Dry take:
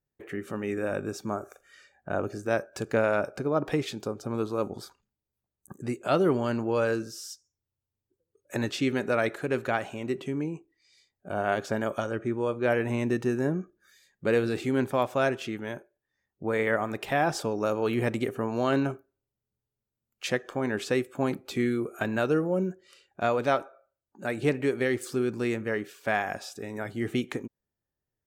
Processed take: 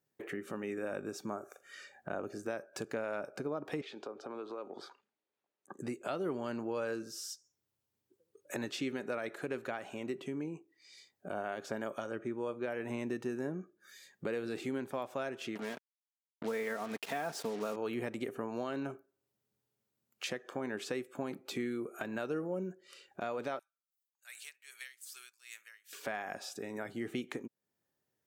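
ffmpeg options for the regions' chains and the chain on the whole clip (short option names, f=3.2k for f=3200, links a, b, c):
-filter_complex "[0:a]asettb=1/sr,asplit=3[a][b][c];[a]atrim=end=3.814[d];[b]atrim=start=3.81:end=5.79,asetpts=PTS-STARTPTS,afade=t=in:d=0.004:c=qsin,afade=t=out:st=1.976:d=0.004:c=qsin,lowpass=9.4k,acrossover=split=290 4100:gain=0.112 1 0.141[e][f][g];[e][f][g]amix=inputs=3:normalize=0,acompressor=threshold=-38dB:ratio=2.5:attack=3.2:release=140:knee=1:detection=peak[h];[c]atrim=start=5.786[i];[d][h]acrossfade=d=0.004:c1=hsin:c2=qsin[j];[j][i]acrossfade=d=0.004:c1=qsin:c2=hsin,asettb=1/sr,asplit=3[k][l][m];[k]atrim=end=15.554[n];[l]atrim=start=15.55:end=17.76,asetpts=PTS-STARTPTS,afade=t=in:d=0.004:c=qsin,afade=t=out:st=2.206:d=0.004:c=qsin,aecho=1:1:4.4:0.57,atrim=end_sample=97461,acrusher=bits=5:mix=0:aa=0.5[o];[m]atrim=start=17.756[p];[n][o]acrossfade=d=0.004:c1=hsin:c2=qsin[q];[q][p]acrossfade=d=0.004:c1=qsin:c2=hsin,asettb=1/sr,asplit=3[r][s][t];[r]atrim=end=23.594[u];[s]atrim=start=23.59:end=25.93,asetpts=PTS-STARTPTS,afade=t=in:d=0.004:c=qsin,afade=t=out:st=2.336:d=0.004:c=qsin,highpass=1.5k,aderivative,aeval=exprs='val(0)*pow(10,-18*(0.5-0.5*cos(2*PI*2.5*n/s))/20)':c=same[v];[t]atrim=start=25.926[w];[u][v]acrossfade=d=0.004:c1=hsin:c2=qsin[x];[x][w]acrossfade=d=0.004:c1=qsin:c2=hsin,highpass=170,alimiter=limit=-16.5dB:level=0:latency=1:release=224,acompressor=threshold=-52dB:ratio=2,volume=5.5dB"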